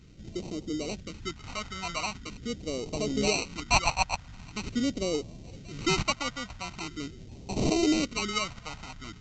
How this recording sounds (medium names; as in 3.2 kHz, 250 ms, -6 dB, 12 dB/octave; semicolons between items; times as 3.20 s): aliases and images of a low sample rate 1.7 kHz, jitter 0%; phasing stages 2, 0.43 Hz, lowest notch 350–1400 Hz; µ-law